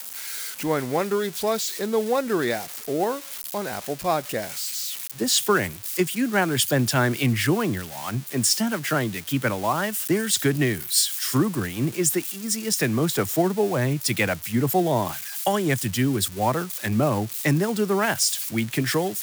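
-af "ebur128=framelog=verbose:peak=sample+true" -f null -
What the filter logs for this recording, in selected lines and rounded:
Integrated loudness:
  I:         -23.6 LUFS
  Threshold: -33.6 LUFS
Loudness range:
  LRA:         3.2 LU
  Threshold: -43.5 LUFS
  LRA low:   -25.7 LUFS
  LRA high:  -22.5 LUFS
Sample peak:
  Peak:       -7.7 dBFS
True peak:
  Peak:       -7.6 dBFS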